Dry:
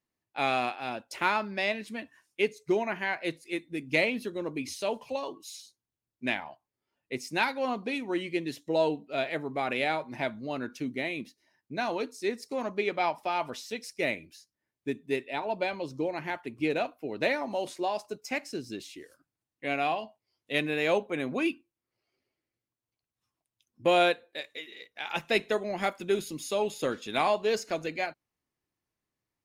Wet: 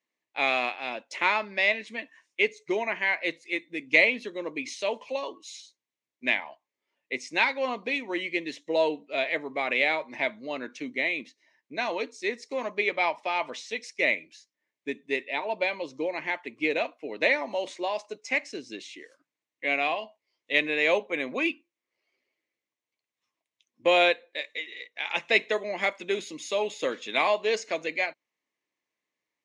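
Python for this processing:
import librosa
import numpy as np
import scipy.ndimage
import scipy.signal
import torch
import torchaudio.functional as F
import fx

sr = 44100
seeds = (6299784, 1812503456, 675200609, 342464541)

y = fx.cabinet(x, sr, low_hz=370.0, low_slope=12, high_hz=6800.0, hz=(380.0, 770.0, 1400.0, 2100.0, 4900.0), db=(-4, -6, -8, 6, -6))
y = y * 10.0 ** (4.5 / 20.0)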